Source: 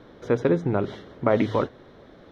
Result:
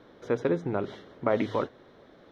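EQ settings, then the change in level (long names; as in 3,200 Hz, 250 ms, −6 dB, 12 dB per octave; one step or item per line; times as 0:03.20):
low-shelf EQ 150 Hz −8 dB
−4.0 dB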